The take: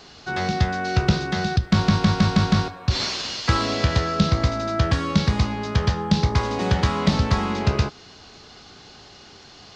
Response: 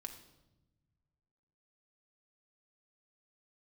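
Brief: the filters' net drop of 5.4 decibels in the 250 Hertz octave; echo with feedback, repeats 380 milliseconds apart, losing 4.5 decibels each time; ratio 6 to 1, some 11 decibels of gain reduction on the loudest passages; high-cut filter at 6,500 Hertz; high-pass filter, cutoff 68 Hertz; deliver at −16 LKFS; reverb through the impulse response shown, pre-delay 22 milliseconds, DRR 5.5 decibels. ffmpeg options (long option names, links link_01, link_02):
-filter_complex "[0:a]highpass=68,lowpass=6500,equalizer=frequency=250:width_type=o:gain=-8.5,acompressor=threshold=-29dB:ratio=6,aecho=1:1:380|760|1140|1520|1900|2280|2660|3040|3420:0.596|0.357|0.214|0.129|0.0772|0.0463|0.0278|0.0167|0.01,asplit=2[link_01][link_02];[1:a]atrim=start_sample=2205,adelay=22[link_03];[link_02][link_03]afir=irnorm=-1:irlink=0,volume=-2dB[link_04];[link_01][link_04]amix=inputs=2:normalize=0,volume=14.5dB"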